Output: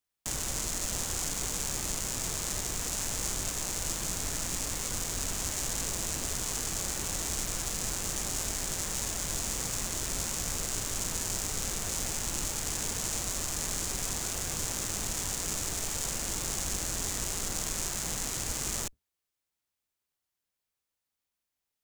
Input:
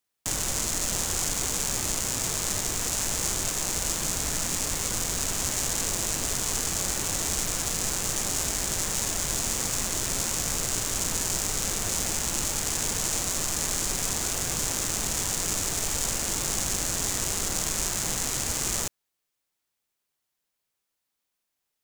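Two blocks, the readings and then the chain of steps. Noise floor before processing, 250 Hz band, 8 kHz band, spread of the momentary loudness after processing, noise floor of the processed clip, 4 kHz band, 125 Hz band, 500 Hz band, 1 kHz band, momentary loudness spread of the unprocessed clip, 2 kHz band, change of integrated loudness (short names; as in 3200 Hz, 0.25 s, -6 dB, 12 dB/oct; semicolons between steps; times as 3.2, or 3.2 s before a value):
-82 dBFS, -5.0 dB, -5.5 dB, 1 LU, under -85 dBFS, -5.5 dB, -4.0 dB, -5.5 dB, -5.5 dB, 1 LU, -5.5 dB, -5.5 dB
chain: octaver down 2 oct, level 0 dB; gain -5.5 dB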